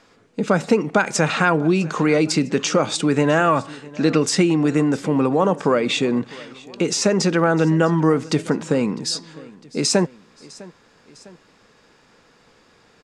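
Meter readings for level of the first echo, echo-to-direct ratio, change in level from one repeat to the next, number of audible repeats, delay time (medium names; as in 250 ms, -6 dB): -21.5 dB, -20.5 dB, -5.0 dB, 2, 654 ms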